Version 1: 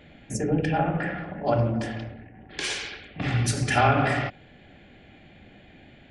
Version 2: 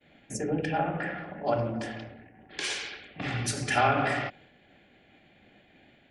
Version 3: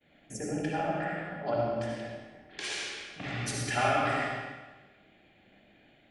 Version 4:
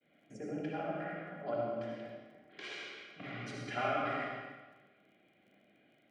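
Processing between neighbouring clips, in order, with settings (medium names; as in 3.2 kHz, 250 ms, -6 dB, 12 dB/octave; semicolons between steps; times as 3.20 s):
bass shelf 150 Hz -11 dB; expander -49 dBFS; trim -2.5 dB
algorithmic reverb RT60 1.2 s, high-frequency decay 0.95×, pre-delay 30 ms, DRR -1 dB; trim -5.5 dB
band-pass 130–3200 Hz; comb of notches 880 Hz; crackle 31 per s -58 dBFS; trim -5.5 dB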